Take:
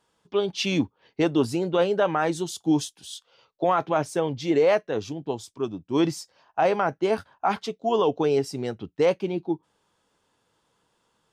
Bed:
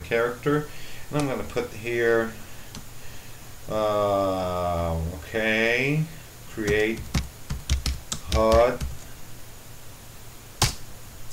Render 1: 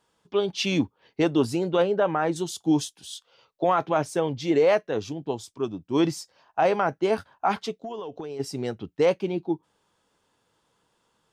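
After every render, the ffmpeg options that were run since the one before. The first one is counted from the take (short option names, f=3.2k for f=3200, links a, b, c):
-filter_complex "[0:a]asettb=1/sr,asplit=3[a][b][c];[a]atrim=end=1.824[d];[b]atrim=start=1.82:end=2.36,asetpts=PTS-STARTPTS,afade=t=in:d=0.004:c=qsin,afade=t=out:st=0.536:d=0.004:c=qsin,highshelf=f=3.2k:g=-11.5[e];[c]atrim=start=2.356[f];[d][e]acrossfade=d=0.004:c1=hsin:c2=qsin[g];[g][f]acrossfade=d=0.004:c1=qsin:c2=hsin,asplit=3[h][i][j];[h]afade=t=out:st=7.77:d=0.02[k];[i]acompressor=threshold=-31dB:ratio=16:attack=3.2:release=140:knee=1:detection=peak,afade=t=in:st=7.77:d=0.02,afade=t=out:st=8.39:d=0.02[l];[j]afade=t=in:st=8.39:d=0.02[m];[k][l][m]amix=inputs=3:normalize=0"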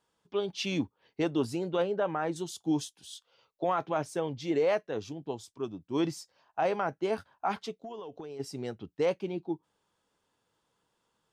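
-af "volume=-7dB"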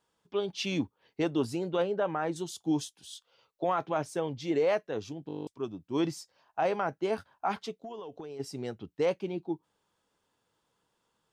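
-filter_complex "[0:a]asplit=11[a][b][c][d][e][f][g][h][i][j][k];[a]atrim=end=5.292[l];[b]atrim=start=5.268:end=5.292[m];[c]atrim=start=5.268:end=5.292[n];[d]atrim=start=5.268:end=5.292[o];[e]atrim=start=5.268:end=5.292[p];[f]atrim=start=5.268:end=5.292[q];[g]atrim=start=5.268:end=5.292[r];[h]atrim=start=5.268:end=5.292[s];[i]atrim=start=5.268:end=5.292[t];[j]atrim=start=5.268:end=5.292[u];[k]atrim=start=5.468[v];[l][m]acrossfade=d=0.004:c1=hsin:c2=hsin[w];[w][n]acrossfade=d=0.004:c1=hsin:c2=hsin[x];[x][o]acrossfade=d=0.004:c1=hsin:c2=hsin[y];[y][p]acrossfade=d=0.004:c1=hsin:c2=hsin[z];[z][q]acrossfade=d=0.004:c1=hsin:c2=hsin[aa];[aa][r]acrossfade=d=0.004:c1=hsin:c2=hsin[ab];[ab][s]acrossfade=d=0.004:c1=hsin:c2=hsin[ac];[ac][t]acrossfade=d=0.004:c1=hsin:c2=hsin[ad];[ad][u]acrossfade=d=0.004:c1=hsin:c2=hsin[ae];[ae][v]acrossfade=d=0.004:c1=hsin:c2=hsin"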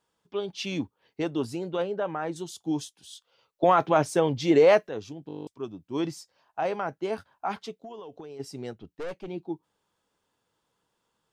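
-filter_complex "[0:a]asettb=1/sr,asplit=3[a][b][c];[a]atrim=end=8.734[d];[b]atrim=start=8.73:end=9.28,asetpts=PTS-STARTPTS,afade=t=in:d=0.004:c=qsin,afade=t=out:st=0.546:d=0.004:c=qsin,aeval=exprs='(tanh(39.8*val(0)+0.5)-tanh(0.5))/39.8':c=same[e];[c]atrim=start=9.276[f];[d][e]acrossfade=d=0.004:c1=hsin:c2=qsin[g];[g][f]acrossfade=d=0.004:c1=qsin:c2=hsin,asplit=3[h][i][j];[h]atrim=end=3.632[k];[i]atrim=start=3.628:end=4.892,asetpts=PTS-STARTPTS,volume=9dB[l];[j]atrim=start=4.888[m];[k][l]acrossfade=d=0.004:c1=hsin:c2=hsin[n];[n][m]acrossfade=d=0.004:c1=hsin:c2=hsin"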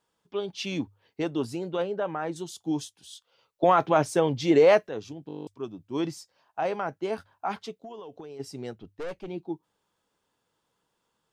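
-af "bandreject=f=50:t=h:w=6,bandreject=f=100:t=h:w=6"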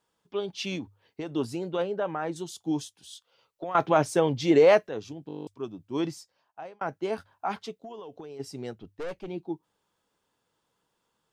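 -filter_complex "[0:a]asettb=1/sr,asplit=3[a][b][c];[a]atrim=end=0.754[d];[b]atrim=start=0.75:end=1.36,asetpts=PTS-STARTPTS,afade=t=in:d=0.004:c=qsin,afade=t=out:st=0.606:d=0.004:c=qsin,acompressor=threshold=-30dB:ratio=10:attack=3.2:release=140:knee=1:detection=peak[e];[c]atrim=start=1.356[f];[d][e]acrossfade=d=0.004:c1=hsin:c2=qsin[g];[g][f]acrossfade=d=0.004:c1=qsin:c2=hsin,asettb=1/sr,asplit=3[h][i][j];[h]atrim=end=2.794[k];[i]atrim=start=2.79:end=3.75,asetpts=PTS-STARTPTS,afade=t=in:d=0.004:c=qsin,afade=t=out:st=0.956:d=0.004:c=qsin,acompressor=threshold=-36dB:ratio=3:attack=3.2:release=140:knee=1:detection=peak[l];[j]atrim=start=3.746[m];[k][l]acrossfade=d=0.004:c1=hsin:c2=qsin[n];[n][m]acrossfade=d=0.004:c1=qsin:c2=hsin,asplit=2[o][p];[o]atrim=end=6.81,asetpts=PTS-STARTPTS,afade=t=out:st=6.05:d=0.76[q];[p]atrim=start=6.81,asetpts=PTS-STARTPTS,afade=t=in:d=0.004:c=hsin[r];[q][r]concat=n=2:v=0:a=1"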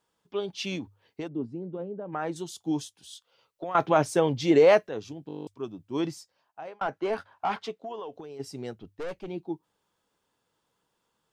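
-filter_complex "[0:a]asplit=3[a][b][c];[a]afade=t=out:st=1.27:d=0.02[d];[b]bandpass=f=210:t=q:w=1.2,afade=t=in:st=1.27:d=0.02,afade=t=out:st=2.12:d=0.02[e];[c]afade=t=in:st=2.12:d=0.02[f];[d][e][f]amix=inputs=3:normalize=0,asettb=1/sr,asplit=3[g][h][i];[g]atrim=end=6.674[j];[h]atrim=start=6.67:end=8.14,asetpts=PTS-STARTPTS,afade=t=in:d=0.004:c=qsin,afade=t=out:st=1.466:d=0.004:c=qsin,asplit=2[k][l];[l]highpass=f=720:p=1,volume=14dB,asoftclip=type=tanh:threshold=-18.5dB[m];[k][m]amix=inputs=2:normalize=0,lowpass=f=2k:p=1,volume=-6dB[n];[i]atrim=start=8.136[o];[j][n]acrossfade=d=0.004:c1=hsin:c2=qsin[p];[p][o]acrossfade=d=0.004:c1=qsin:c2=hsin"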